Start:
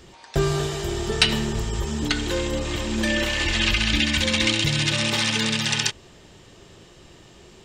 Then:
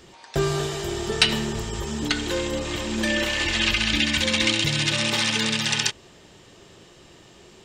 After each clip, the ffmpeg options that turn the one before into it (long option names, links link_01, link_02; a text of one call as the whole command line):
ffmpeg -i in.wav -af "lowshelf=frequency=95:gain=-8.5" out.wav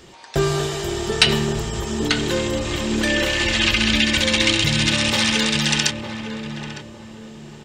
ffmpeg -i in.wav -filter_complex "[0:a]asplit=2[link_01][link_02];[link_02]adelay=907,lowpass=frequency=890:poles=1,volume=-5.5dB,asplit=2[link_03][link_04];[link_04]adelay=907,lowpass=frequency=890:poles=1,volume=0.37,asplit=2[link_05][link_06];[link_06]adelay=907,lowpass=frequency=890:poles=1,volume=0.37,asplit=2[link_07][link_08];[link_08]adelay=907,lowpass=frequency=890:poles=1,volume=0.37[link_09];[link_01][link_03][link_05][link_07][link_09]amix=inputs=5:normalize=0,volume=3.5dB" out.wav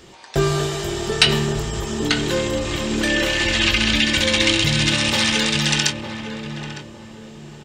ffmpeg -i in.wav -filter_complex "[0:a]asplit=2[link_01][link_02];[link_02]adelay=21,volume=-11dB[link_03];[link_01][link_03]amix=inputs=2:normalize=0" out.wav